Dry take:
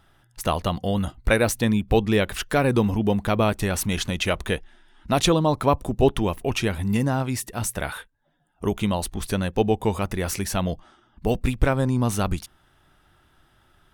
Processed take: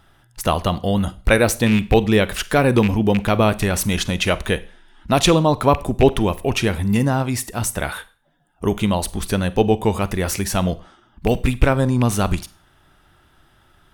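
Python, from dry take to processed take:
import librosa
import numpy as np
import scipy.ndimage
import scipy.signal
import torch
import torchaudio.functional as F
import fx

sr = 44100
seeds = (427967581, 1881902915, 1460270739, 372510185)

y = fx.rattle_buzz(x, sr, strikes_db=-21.0, level_db=-17.0)
y = fx.rev_schroeder(y, sr, rt60_s=0.38, comb_ms=33, drr_db=16.5)
y = y * librosa.db_to_amplitude(4.5)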